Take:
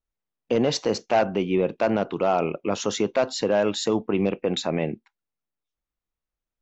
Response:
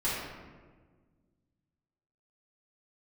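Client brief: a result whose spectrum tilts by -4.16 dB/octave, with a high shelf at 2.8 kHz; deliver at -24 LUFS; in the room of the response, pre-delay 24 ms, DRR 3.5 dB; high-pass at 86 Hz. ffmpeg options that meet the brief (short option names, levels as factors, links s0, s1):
-filter_complex "[0:a]highpass=86,highshelf=f=2800:g=6.5,asplit=2[s0][s1];[1:a]atrim=start_sample=2205,adelay=24[s2];[s1][s2]afir=irnorm=-1:irlink=0,volume=0.237[s3];[s0][s3]amix=inputs=2:normalize=0,volume=0.794"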